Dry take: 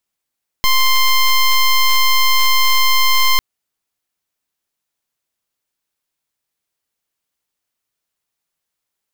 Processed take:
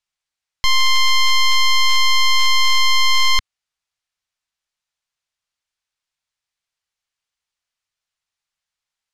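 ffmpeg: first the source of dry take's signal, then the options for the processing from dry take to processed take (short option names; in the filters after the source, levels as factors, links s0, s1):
-f lavfi -i "aevalsrc='0.266*(2*lt(mod(1050*t,1),0.11)-1)':d=2.75:s=44100"
-af "lowpass=6500,equalizer=f=300:w=0.63:g=-14"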